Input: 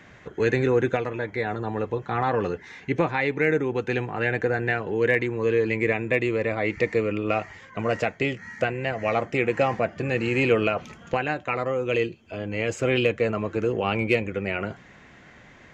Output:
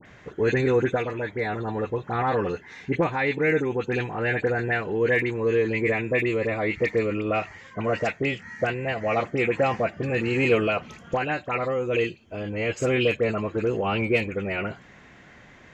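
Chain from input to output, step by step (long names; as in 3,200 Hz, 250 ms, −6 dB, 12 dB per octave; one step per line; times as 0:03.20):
all-pass dispersion highs, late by 57 ms, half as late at 1,900 Hz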